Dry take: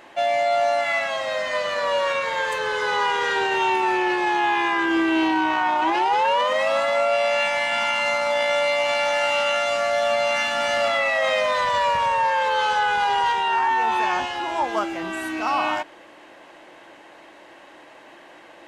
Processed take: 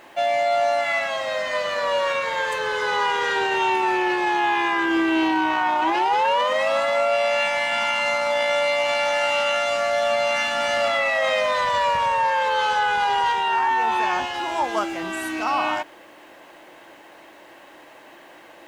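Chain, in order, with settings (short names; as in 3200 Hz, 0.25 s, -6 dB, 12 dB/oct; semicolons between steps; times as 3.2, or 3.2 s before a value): 14.34–15.44 high shelf 4600 Hz +5.5 dB; bit-crush 10-bit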